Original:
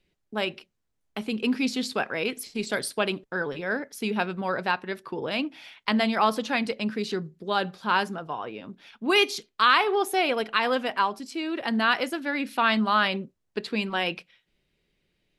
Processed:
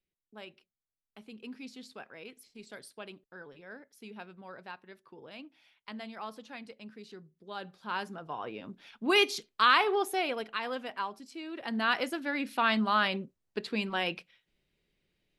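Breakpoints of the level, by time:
0:07.20 −19 dB
0:08.08 −10 dB
0:08.48 −3.5 dB
0:09.87 −3.5 dB
0:10.60 −11 dB
0:11.51 −11 dB
0:11.96 −4.5 dB

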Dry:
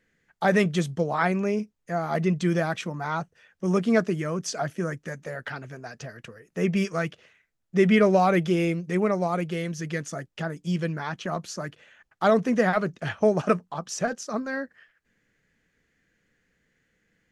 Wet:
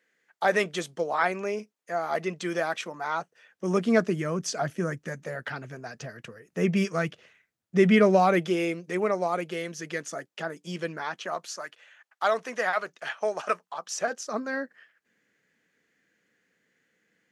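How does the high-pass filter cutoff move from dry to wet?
0:03.12 410 Hz
0:04.45 100 Hz
0:07.91 100 Hz
0:08.59 320 Hz
0:10.95 320 Hz
0:11.67 740 Hz
0:13.72 740 Hz
0:14.51 220 Hz

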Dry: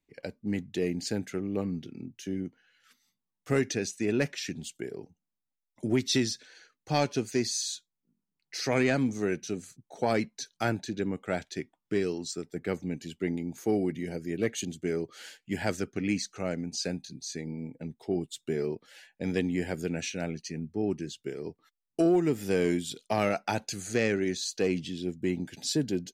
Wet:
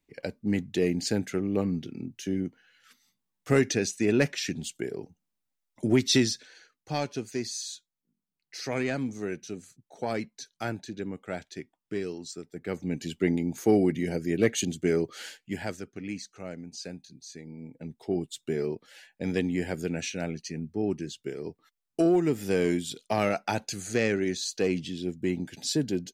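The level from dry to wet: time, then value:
0:06.21 +4 dB
0:07.01 −4 dB
0:12.60 −4 dB
0:13.02 +5.5 dB
0:15.21 +5.5 dB
0:15.81 −7 dB
0:17.47 −7 dB
0:18.00 +1 dB

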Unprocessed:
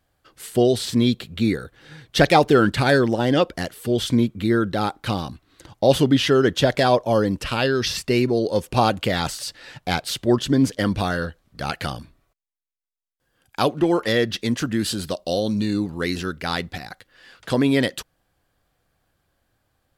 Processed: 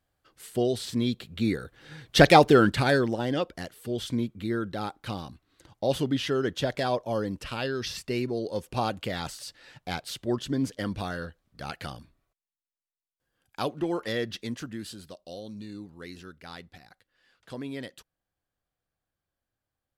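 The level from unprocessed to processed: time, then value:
0:01.09 −8.5 dB
0:02.28 0 dB
0:03.41 −10 dB
0:14.35 −10 dB
0:15.08 −18 dB

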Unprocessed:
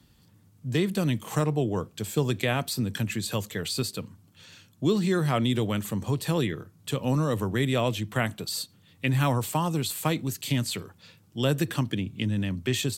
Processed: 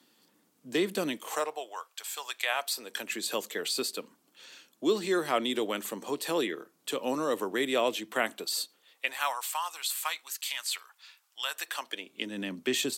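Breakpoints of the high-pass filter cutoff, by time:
high-pass filter 24 dB per octave
0:01.05 270 Hz
0:01.78 850 Hz
0:02.34 850 Hz
0:03.24 300 Hz
0:08.55 300 Hz
0:09.47 950 Hz
0:11.50 950 Hz
0:12.43 250 Hz

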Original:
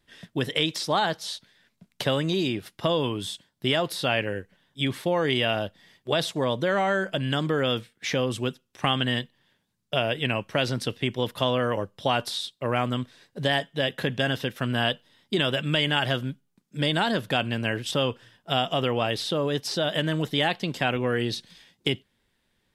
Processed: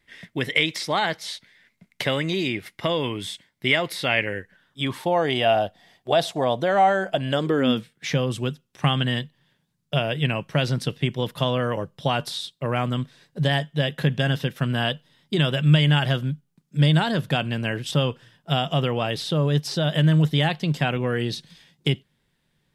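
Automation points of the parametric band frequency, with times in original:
parametric band +14 dB 0.36 octaves
0:04.33 2,100 Hz
0:05.19 720 Hz
0:07.24 720 Hz
0:07.90 150 Hz

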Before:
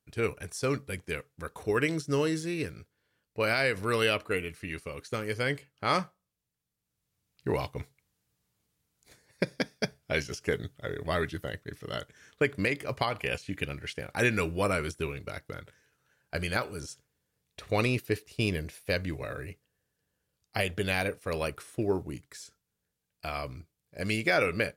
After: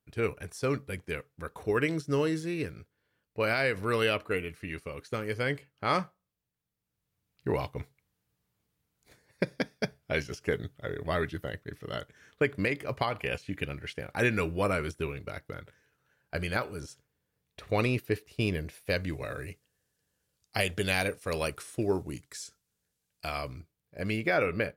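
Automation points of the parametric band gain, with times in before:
parametric band 7,500 Hz 2 octaves
0:18.60 −6 dB
0:19.45 +5 dB
0:23.28 +5 dB
0:23.57 −1.5 dB
0:24.17 −12.5 dB

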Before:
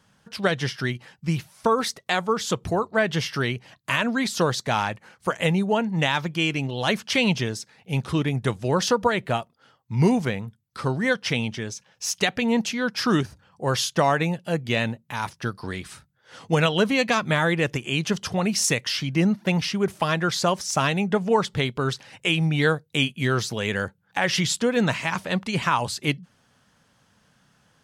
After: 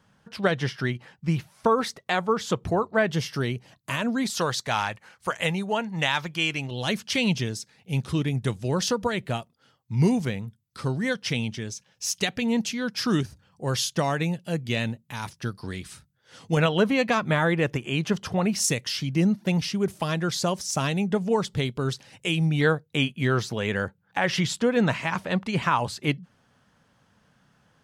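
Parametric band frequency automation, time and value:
parametric band −7 dB 2.8 octaves
12,000 Hz
from 0:03.10 1,900 Hz
from 0:04.30 250 Hz
from 0:06.71 1,000 Hz
from 0:16.57 7,000 Hz
from 0:18.60 1,400 Hz
from 0:22.61 10,000 Hz

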